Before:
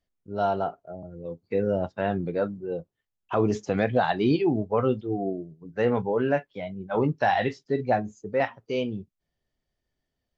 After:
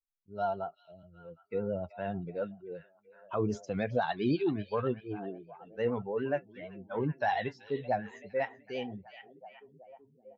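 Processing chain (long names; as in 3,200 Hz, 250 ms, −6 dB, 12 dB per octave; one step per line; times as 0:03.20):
spectral dynamics exaggerated over time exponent 1.5
pitch vibrato 9.5 Hz 38 cents
echo through a band-pass that steps 381 ms, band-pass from 3,300 Hz, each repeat −0.7 octaves, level −10 dB
level −5 dB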